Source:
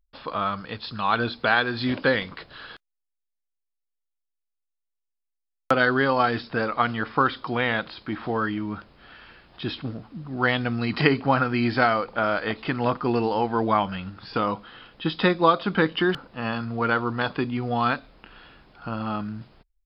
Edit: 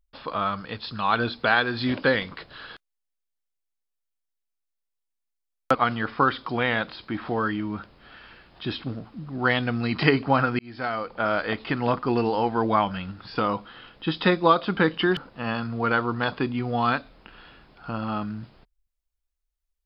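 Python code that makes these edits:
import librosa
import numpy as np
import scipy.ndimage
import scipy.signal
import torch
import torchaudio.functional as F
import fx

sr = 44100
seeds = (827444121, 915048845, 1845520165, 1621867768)

y = fx.edit(x, sr, fx.cut(start_s=5.75, length_s=0.98),
    fx.fade_in_span(start_s=11.57, length_s=0.75), tone=tone)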